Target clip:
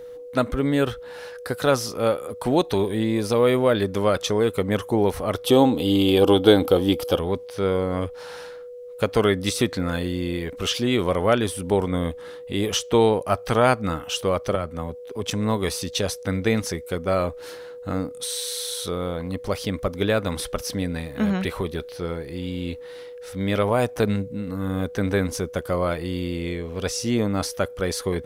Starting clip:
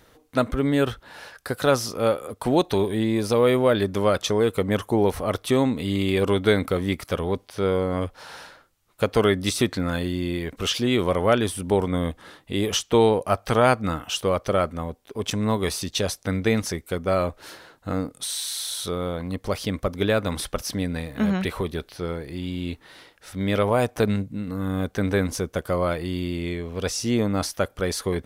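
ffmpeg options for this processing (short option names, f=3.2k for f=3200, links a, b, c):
-filter_complex "[0:a]aeval=exprs='val(0)+0.0158*sin(2*PI*490*n/s)':c=same,asettb=1/sr,asplit=3[a][b][c];[a]atrim=end=5.464[d];[b]atrim=start=5.46:end=7.19,asetpts=PTS-STARTPTS,afade=t=in:d=0.004:c=qsin,afade=t=out:st=1.726:d=0.004:c=qsin,equalizer=f=315:t=o:w=0.33:g=10,equalizer=f=500:t=o:w=0.33:g=7,equalizer=f=800:t=o:w=0.33:g=11,equalizer=f=2k:t=o:w=0.33:g=-10,equalizer=f=3.15k:t=o:w=0.33:g=10,equalizer=f=5k:t=o:w=0.33:g=5,equalizer=f=12.5k:t=o:w=0.33:g=11[e];[c]atrim=start=7.186[f];[d][e]acrossfade=d=0.004:c1=hsin:c2=qsin[g];[g][f]acrossfade=d=0.004:c1=qsin:c2=hsin,asettb=1/sr,asplit=3[h][i][j];[h]atrim=end=14.554[k];[i]atrim=start=14.55:end=15.29,asetpts=PTS-STARTPTS,afade=t=in:d=0.004:c=qsin,afade=t=out:st=0.736:d=0.004:c=qsin,acrossover=split=160[l][m];[m]acompressor=threshold=-24dB:ratio=6[n];[l][n]amix=inputs=2:normalize=0[o];[j]atrim=start=15.286[p];[k][o]acrossfade=d=0.004:c1=hsin:c2=qsin[q];[q][p]acrossfade=d=0.004:c1=qsin:c2=hsin"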